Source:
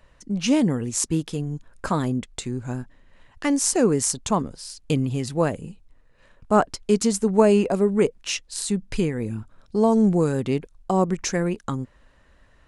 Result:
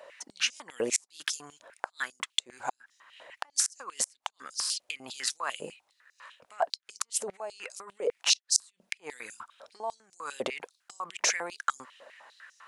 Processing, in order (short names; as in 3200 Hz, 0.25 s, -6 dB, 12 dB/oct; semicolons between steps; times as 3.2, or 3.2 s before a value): negative-ratio compressor -28 dBFS, ratio -1; flipped gate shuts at -13 dBFS, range -32 dB; stepped high-pass 10 Hz 580–5800 Hz